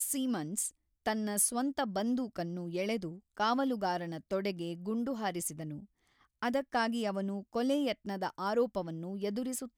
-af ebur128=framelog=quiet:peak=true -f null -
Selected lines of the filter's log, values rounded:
Integrated loudness:
  I:         -34.2 LUFS
  Threshold: -44.4 LUFS
Loudness range:
  LRA:         2.7 LU
  Threshold: -54.6 LUFS
  LRA low:   -36.0 LUFS
  LRA high:  -33.2 LUFS
True peak:
  Peak:      -17.8 dBFS